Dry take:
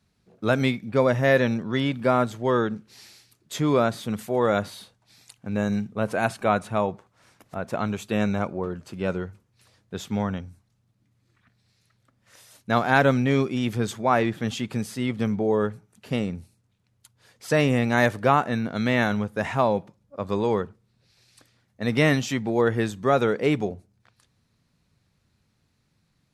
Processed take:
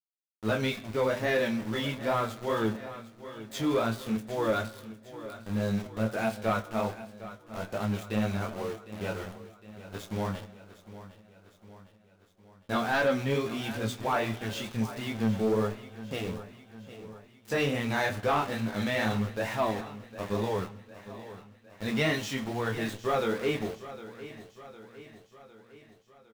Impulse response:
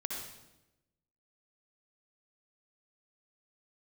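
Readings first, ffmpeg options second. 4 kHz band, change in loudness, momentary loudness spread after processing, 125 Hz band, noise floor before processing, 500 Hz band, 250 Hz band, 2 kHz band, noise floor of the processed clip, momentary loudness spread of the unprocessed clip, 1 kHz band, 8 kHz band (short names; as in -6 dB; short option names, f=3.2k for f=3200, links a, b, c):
-2.5 dB, -6.5 dB, 18 LU, -7.0 dB, -70 dBFS, -6.5 dB, -6.5 dB, -5.5 dB, -60 dBFS, 12 LU, -6.5 dB, -4.0 dB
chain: -filter_complex "[0:a]bandreject=f=60:t=h:w=6,bandreject=f=120:t=h:w=6,bandreject=f=180:t=h:w=6,bandreject=f=240:t=h:w=6,adynamicequalizer=threshold=0.00794:dfrequency=3400:dqfactor=1.2:tfrequency=3400:tqfactor=1.2:attack=5:release=100:ratio=0.375:range=2:mode=boostabove:tftype=bell,flanger=delay=17.5:depth=5.2:speed=2.3,aeval=exprs='val(0)*gte(abs(val(0)),0.0168)':c=same,asplit=2[a][b];[b]adelay=27,volume=-11.5dB[c];[a][c]amix=inputs=2:normalize=0,flanger=delay=8.9:depth=1.2:regen=36:speed=0.46:shape=triangular,asoftclip=type=tanh:threshold=-20dB,aecho=1:1:757|1514|2271|3028|3785:0.178|0.0978|0.0538|0.0296|0.0163,asplit=2[d][e];[1:a]atrim=start_sample=2205,lowpass=7.8k[f];[e][f]afir=irnorm=-1:irlink=0,volume=-16dB[g];[d][g]amix=inputs=2:normalize=0"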